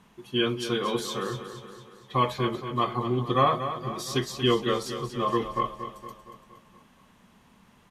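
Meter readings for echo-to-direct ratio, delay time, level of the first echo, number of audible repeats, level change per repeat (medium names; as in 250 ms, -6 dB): -8.5 dB, 233 ms, -10.0 dB, 5, -5.5 dB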